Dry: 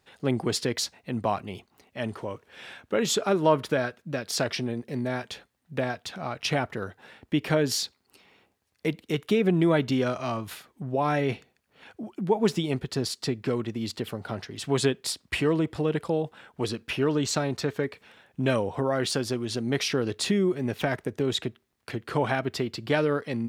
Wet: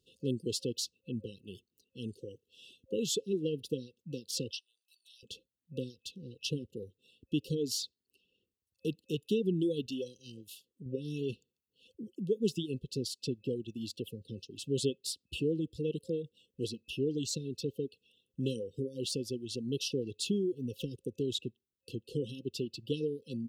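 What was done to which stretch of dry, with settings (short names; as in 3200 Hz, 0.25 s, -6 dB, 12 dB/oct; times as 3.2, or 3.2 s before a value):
4.51–5.23 HPF 1500 Hz 24 dB/oct
9.86–10.86 low shelf 310 Hz -7 dB
whole clip: reverb removal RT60 1.1 s; FFT band-reject 530–2600 Hz; gain -6.5 dB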